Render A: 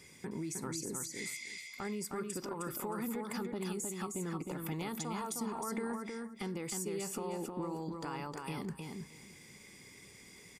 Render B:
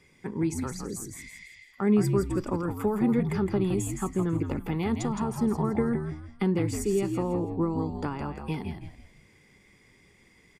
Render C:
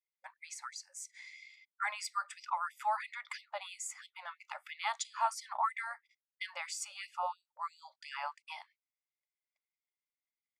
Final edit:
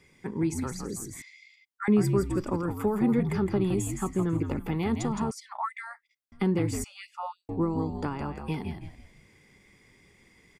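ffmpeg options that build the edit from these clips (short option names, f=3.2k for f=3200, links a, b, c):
-filter_complex "[2:a]asplit=3[a][b][c];[1:a]asplit=4[d][e][f][g];[d]atrim=end=1.222[h];[a]atrim=start=1.218:end=1.882[i];[e]atrim=start=1.878:end=5.312[j];[b]atrim=start=5.308:end=6.322[k];[f]atrim=start=6.318:end=6.842[l];[c]atrim=start=6.838:end=7.492[m];[g]atrim=start=7.488[n];[h][i]acrossfade=d=0.004:c1=hsin:c2=hsin[o];[o][j]acrossfade=d=0.004:c1=hsin:c2=hsin[p];[p][k]acrossfade=d=0.004:c1=hsin:c2=hsin[q];[q][l]acrossfade=d=0.004:c1=hsin:c2=hsin[r];[r][m]acrossfade=d=0.004:c1=hsin:c2=hsin[s];[s][n]acrossfade=d=0.004:c1=hsin:c2=hsin"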